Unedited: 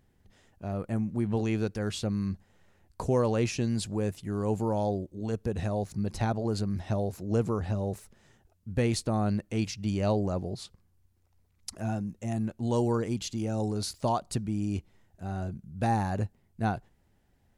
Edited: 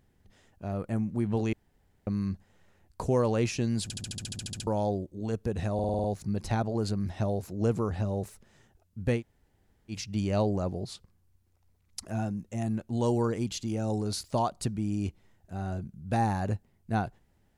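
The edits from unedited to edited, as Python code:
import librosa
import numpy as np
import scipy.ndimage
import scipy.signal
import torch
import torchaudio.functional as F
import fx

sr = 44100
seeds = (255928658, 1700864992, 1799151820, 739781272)

y = fx.edit(x, sr, fx.room_tone_fill(start_s=1.53, length_s=0.54),
    fx.stutter_over(start_s=3.83, slice_s=0.07, count=12),
    fx.stutter(start_s=5.74, slice_s=0.05, count=7),
    fx.room_tone_fill(start_s=8.88, length_s=0.75, crossfade_s=0.1), tone=tone)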